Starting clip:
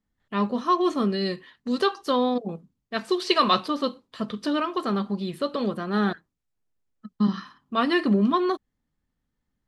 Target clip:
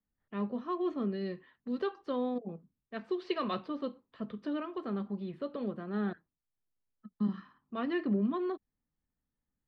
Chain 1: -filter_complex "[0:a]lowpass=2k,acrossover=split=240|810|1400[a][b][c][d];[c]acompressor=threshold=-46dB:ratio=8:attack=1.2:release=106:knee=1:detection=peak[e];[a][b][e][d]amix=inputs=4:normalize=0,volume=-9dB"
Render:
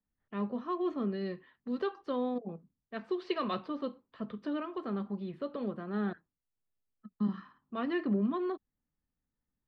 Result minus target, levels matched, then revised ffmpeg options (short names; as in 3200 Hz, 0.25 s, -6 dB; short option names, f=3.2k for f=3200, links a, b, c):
compressor: peak gain reduction -9.5 dB
-filter_complex "[0:a]lowpass=2k,acrossover=split=240|810|1400[a][b][c][d];[c]acompressor=threshold=-57dB:ratio=8:attack=1.2:release=106:knee=1:detection=peak[e];[a][b][e][d]amix=inputs=4:normalize=0,volume=-9dB"